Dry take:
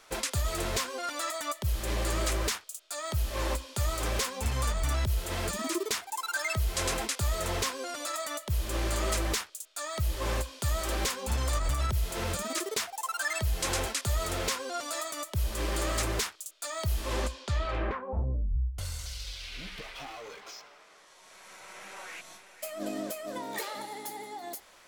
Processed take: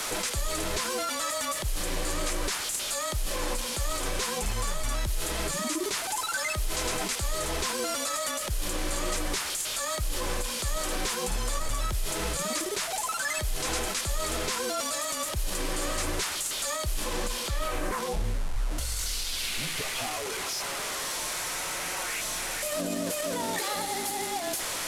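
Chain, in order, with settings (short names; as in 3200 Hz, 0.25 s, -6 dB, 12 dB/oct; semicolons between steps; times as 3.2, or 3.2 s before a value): delta modulation 64 kbps, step -36.5 dBFS; high shelf 6500 Hz +7.5 dB; in parallel at -1 dB: negative-ratio compressor -36 dBFS; on the sum: limiter -21 dBFS, peak gain reduction 5.5 dB; frequency shift -28 Hz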